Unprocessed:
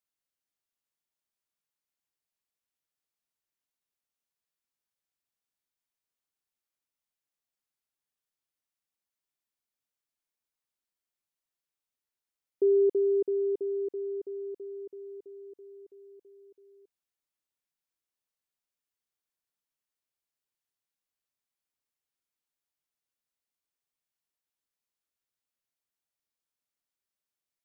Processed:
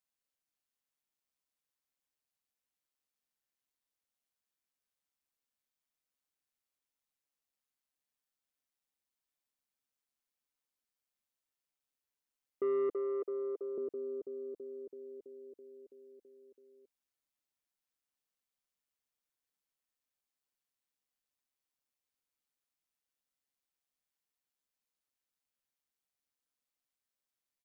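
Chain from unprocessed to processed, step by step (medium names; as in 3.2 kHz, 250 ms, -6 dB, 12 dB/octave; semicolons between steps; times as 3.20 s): comb 3.9 ms, depth 30%; AM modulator 140 Hz, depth 30%; saturation -28 dBFS, distortion -14 dB; 12.94–13.78 s: high-pass 380 Hz 24 dB/octave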